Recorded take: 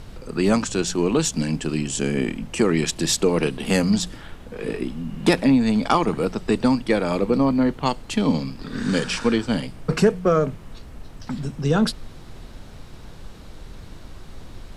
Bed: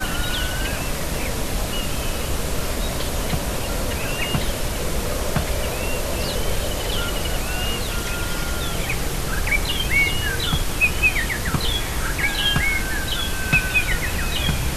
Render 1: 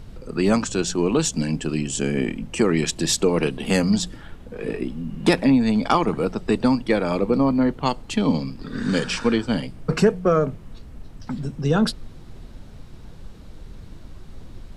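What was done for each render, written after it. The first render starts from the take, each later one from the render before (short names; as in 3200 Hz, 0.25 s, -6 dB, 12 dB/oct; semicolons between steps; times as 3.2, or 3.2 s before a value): denoiser 6 dB, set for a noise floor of -41 dBFS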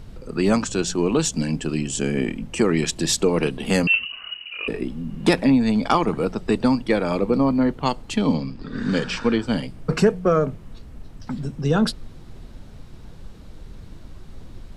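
3.87–4.68 inverted band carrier 2900 Hz; 8.34–9.42 air absorption 75 m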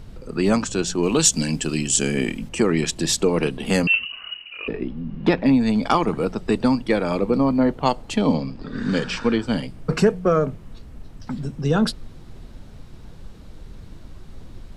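1.03–2.49 high shelf 2900 Hz +10.5 dB; 4.41–5.46 air absorption 220 m; 7.58–8.71 bell 640 Hz +5.5 dB 1 oct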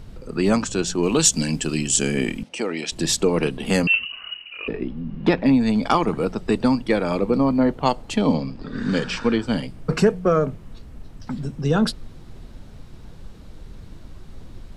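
2.43–2.92 speaker cabinet 370–8900 Hz, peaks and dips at 380 Hz -7 dB, 1100 Hz -9 dB, 1700 Hz -6 dB, 7200 Hz -9 dB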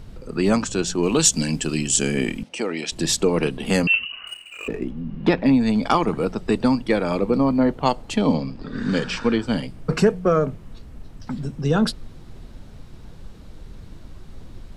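4.27–5.03 median filter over 9 samples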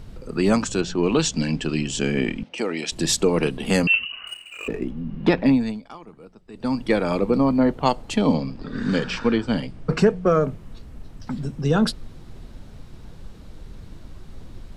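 0.81–2.58 LPF 4000 Hz; 5.49–6.86 dip -22 dB, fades 0.33 s; 8.96–10.26 air absorption 50 m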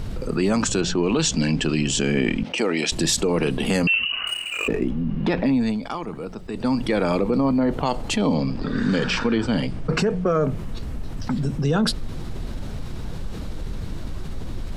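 limiter -13.5 dBFS, peak gain reduction 9 dB; fast leveller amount 50%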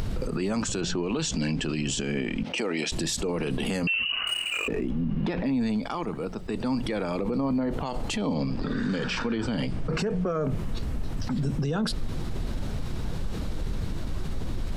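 limiter -20 dBFS, peak gain reduction 11 dB; upward compressor, threshold -32 dBFS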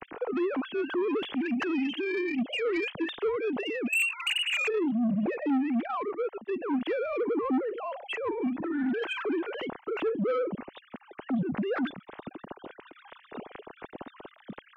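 sine-wave speech; soft clip -23 dBFS, distortion -10 dB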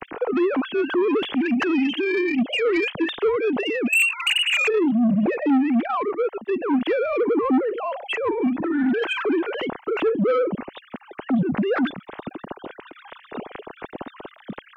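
gain +8 dB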